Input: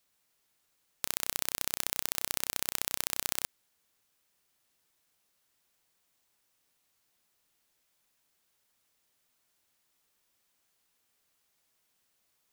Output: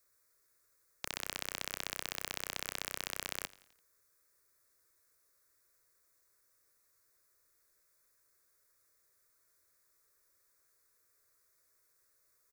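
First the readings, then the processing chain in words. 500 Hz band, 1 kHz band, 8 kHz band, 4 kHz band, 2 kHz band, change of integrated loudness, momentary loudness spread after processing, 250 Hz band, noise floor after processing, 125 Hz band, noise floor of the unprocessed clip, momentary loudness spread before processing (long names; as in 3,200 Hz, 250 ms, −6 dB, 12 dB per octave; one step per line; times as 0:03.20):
−1.5 dB, −2.5 dB, −9.0 dB, −3.5 dB, −1.0 dB, −7.5 dB, 4 LU, −2.5 dB, −74 dBFS, −2.0 dB, −76 dBFS, 4 LU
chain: phaser with its sweep stopped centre 810 Hz, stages 6
wrap-around overflow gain 18 dB
repeating echo 85 ms, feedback 55%, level −21 dB
level +3 dB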